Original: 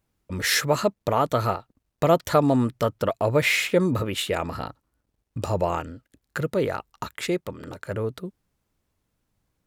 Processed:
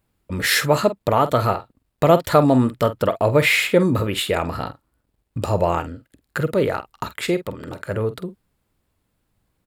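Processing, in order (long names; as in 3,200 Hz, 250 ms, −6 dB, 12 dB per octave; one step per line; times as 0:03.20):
parametric band 6,000 Hz −7 dB 0.35 octaves
double-tracking delay 47 ms −13 dB
level +4.5 dB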